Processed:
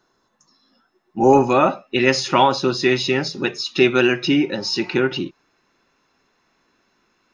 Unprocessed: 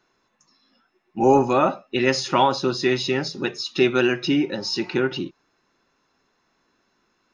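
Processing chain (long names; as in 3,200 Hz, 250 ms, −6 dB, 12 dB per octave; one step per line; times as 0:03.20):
parametric band 2,400 Hz −9.5 dB 0.56 octaves, from 0:01.33 +3 dB
level +3 dB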